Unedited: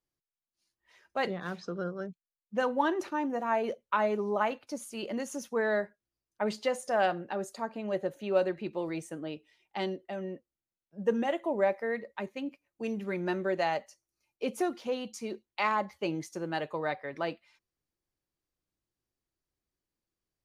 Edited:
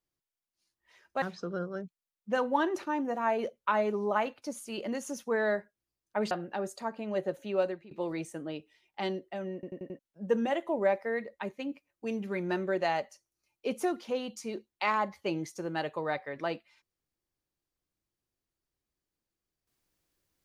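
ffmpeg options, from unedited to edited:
-filter_complex "[0:a]asplit=9[s0][s1][s2][s3][s4][s5][s6][s7][s8];[s0]atrim=end=1.222[s9];[s1]atrim=start=1.468:end=6.562[s10];[s2]atrim=start=7.078:end=8.68,asetpts=PTS-STARTPTS,afade=t=out:st=1.062:d=0.54:c=qsin:silence=0.0749894[s11];[s3]atrim=start=8.68:end=10.402,asetpts=PTS-STARTPTS,afade=t=in:d=0.004:c=hsin:silence=0.0749894[s12];[s4]atrim=start=10.308:end=10.402[s13];[s5]atrim=start=10.308:end=10.402[s14];[s6]atrim=start=10.308:end=10.402[s15];[s7]atrim=start=10.308:end=10.402[s16];[s8]atrim=start=10.758[s17];[s9][s10]acrossfade=d=0.004:c1=hsin:c2=hsin[s18];[s11][s12]concat=n=2:v=0:a=1[s19];[s18][s19]acrossfade=d=0.004:c1=hsin:c2=hsin[s20];[s20][s13]acrossfade=d=0.004:c1=hsin:c2=hsin[s21];[s21][s14]acrossfade=d=0.004:c1=hsin:c2=hsin[s22];[s22][s15]acrossfade=d=0.004:c1=hsin:c2=hsin[s23];[s23][s16]acrossfade=d=0.004:c1=hsin:c2=hsin[s24];[s24][s17]acrossfade=d=0.004:c1=hsin:c2=hsin"

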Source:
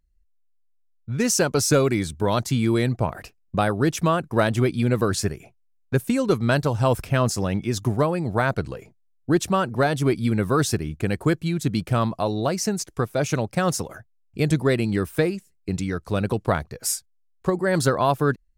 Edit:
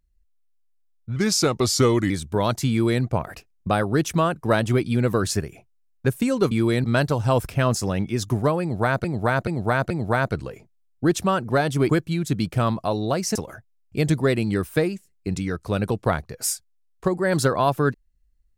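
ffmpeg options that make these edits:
-filter_complex "[0:a]asplit=10[s0][s1][s2][s3][s4][s5][s6][s7][s8][s9];[s0]atrim=end=1.164[s10];[s1]atrim=start=1.16:end=1.98,asetpts=PTS-STARTPTS,asetrate=38367,aresample=44100[s11];[s2]atrim=start=1.976:end=6.392[s12];[s3]atrim=start=2.578:end=2.912[s13];[s4]atrim=start=6.388:end=8.592[s14];[s5]atrim=start=8.158:end=8.592[s15];[s6]atrim=start=8.158:end=8.592[s16];[s7]atrim=start=8.158:end=10.152[s17];[s8]atrim=start=11.238:end=12.702[s18];[s9]atrim=start=13.768[s19];[s10][s11]acrossfade=d=0.004:c1=hsin:c2=hsin[s20];[s20][s12]acrossfade=d=0.004:c1=hsin:c2=hsin[s21];[s21][s13]acrossfade=d=0.004:c1=hsin:c2=hsin[s22];[s22][s14]acrossfade=d=0.004:c1=hsin:c2=hsin[s23];[s23][s15]acrossfade=d=0.004:c1=hsin:c2=hsin[s24];[s24][s16]acrossfade=d=0.004:c1=hsin:c2=hsin[s25];[s25][s17]acrossfade=d=0.004:c1=hsin:c2=hsin[s26];[s26][s18]acrossfade=d=0.004:c1=hsin:c2=hsin[s27];[s27][s19]acrossfade=d=0.004:c1=hsin:c2=hsin"

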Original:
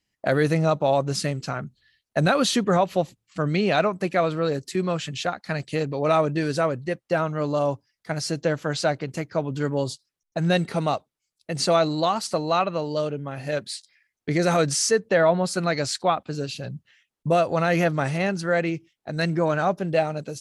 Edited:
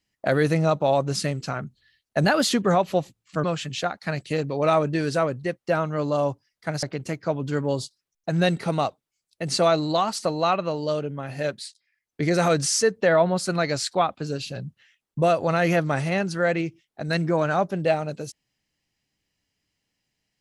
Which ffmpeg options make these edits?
-filter_complex "[0:a]asplit=7[s0][s1][s2][s3][s4][s5][s6];[s0]atrim=end=2.244[s7];[s1]atrim=start=2.24:end=2.52,asetpts=PTS-STARTPTS,asetrate=48069,aresample=44100,atrim=end_sample=11328,asetpts=PTS-STARTPTS[s8];[s2]atrim=start=2.516:end=3.462[s9];[s3]atrim=start=4.858:end=8.252[s10];[s4]atrim=start=8.908:end=13.92,asetpts=PTS-STARTPTS,afade=t=out:st=4.642:d=0.37:silence=0.237137[s11];[s5]atrim=start=13.92:end=13.94,asetpts=PTS-STARTPTS,volume=0.237[s12];[s6]atrim=start=13.94,asetpts=PTS-STARTPTS,afade=t=in:d=0.37:silence=0.237137[s13];[s7][s8]acrossfade=d=0.004:c1=hsin:c2=hsin[s14];[s14][s9]acrossfade=d=0.004:c1=hsin:c2=hsin[s15];[s15][s10]acrossfade=d=0.004:c1=hsin:c2=hsin[s16];[s11][s12][s13]concat=n=3:v=0:a=1[s17];[s16][s17]acrossfade=d=0.004:c1=hsin:c2=hsin"

